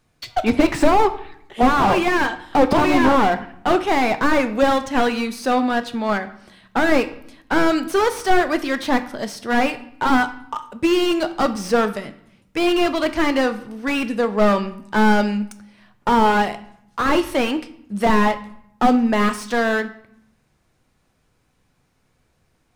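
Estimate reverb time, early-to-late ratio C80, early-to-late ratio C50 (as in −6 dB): 0.70 s, 17.0 dB, 14.5 dB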